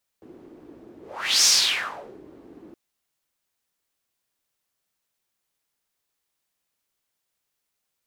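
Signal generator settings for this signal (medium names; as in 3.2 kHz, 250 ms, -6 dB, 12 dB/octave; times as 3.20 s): whoosh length 2.52 s, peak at 1.23 s, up 0.47 s, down 0.80 s, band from 330 Hz, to 5.8 kHz, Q 4, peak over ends 30 dB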